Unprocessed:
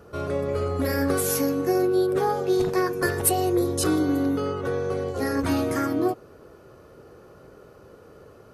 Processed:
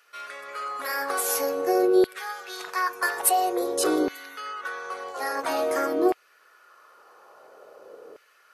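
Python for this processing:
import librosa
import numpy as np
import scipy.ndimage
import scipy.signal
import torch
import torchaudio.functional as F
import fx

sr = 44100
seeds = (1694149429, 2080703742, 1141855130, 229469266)

y = fx.filter_lfo_highpass(x, sr, shape='saw_down', hz=0.49, low_hz=410.0, high_hz=2200.0, q=1.9)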